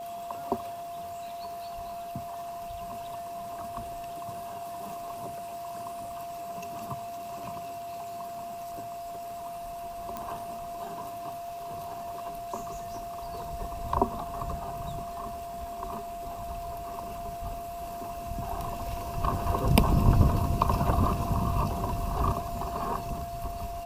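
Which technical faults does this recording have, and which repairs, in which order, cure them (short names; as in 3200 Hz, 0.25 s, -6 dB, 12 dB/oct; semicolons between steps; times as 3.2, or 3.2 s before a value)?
crackle 24/s -40 dBFS
tone 690 Hz -36 dBFS
10.17 pop -20 dBFS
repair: de-click; notch 690 Hz, Q 30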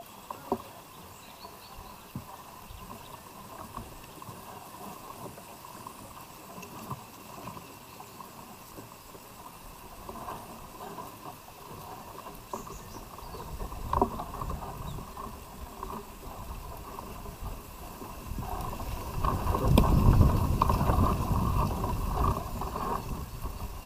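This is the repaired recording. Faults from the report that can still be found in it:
none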